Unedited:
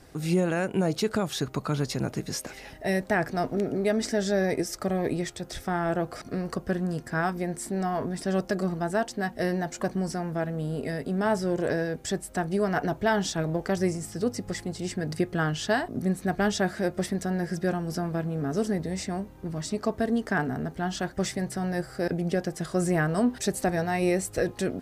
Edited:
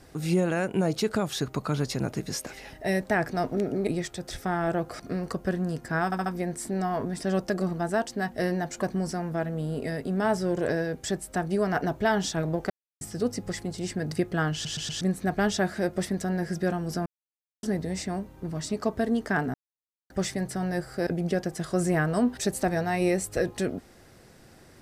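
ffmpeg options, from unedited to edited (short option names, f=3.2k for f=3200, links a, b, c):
-filter_complex "[0:a]asplit=15[a][b][c][d][e][f][g][h][i][j][k][l][m][n][o];[a]atrim=end=3.872[p];[b]atrim=start=5.088:end=7.342[q];[c]atrim=start=7.268:end=7.342[r];[d]atrim=start=7.268:end=7.342[s];[e]atrim=start=7.268:end=13.71,asetpts=PTS-STARTPTS,afade=t=out:st=6.438:d=0.004:c=hsin[t];[f]atrim=start=13.71:end=14.02,asetpts=PTS-STARTPTS,volume=0[u];[g]atrim=start=14.02:end=15.662,asetpts=PTS-STARTPTS,afade=t=in:d=0.004:c=hsin[v];[h]atrim=start=15.538:end=15.662[w];[i]atrim=start=15.538:end=15.662[x];[j]atrim=start=15.538:end=15.662[y];[k]atrim=start=16.018:end=18.07,asetpts=PTS-STARTPTS,afade=t=out:st=2.048:d=0.004:c=hsin[z];[l]atrim=start=18.07:end=18.64,asetpts=PTS-STARTPTS,volume=0[aa];[m]atrim=start=18.64:end=20.55,asetpts=PTS-STARTPTS,afade=t=in:d=0.004:c=hsin,afade=t=out:st=1.906:d=0.004:c=hsin[ab];[n]atrim=start=20.55:end=21.11,asetpts=PTS-STARTPTS,volume=0[ac];[o]atrim=start=21.11,asetpts=PTS-STARTPTS,afade=t=in:d=0.004:c=hsin[ad];[p][q]acrossfade=d=0.004:c1=hsin:c2=hsin[ae];[ae][r]acrossfade=d=0.004:c1=hsin:c2=hsin[af];[af][s]acrossfade=d=0.004:c1=hsin:c2=hsin[ag];[t][u][v]concat=n=3:v=0:a=1[ah];[ag][ah]acrossfade=d=0.004:c1=hsin:c2=hsin[ai];[ai][w]acrossfade=d=0.004:c1=hsin:c2=hsin[aj];[aj][x]acrossfade=d=0.004:c1=hsin:c2=hsin[ak];[ak][y]acrossfade=d=0.004:c1=hsin:c2=hsin[al];[z][aa][ab][ac][ad]concat=n=5:v=0:a=1[am];[al][am]acrossfade=d=0.004:c1=hsin:c2=hsin"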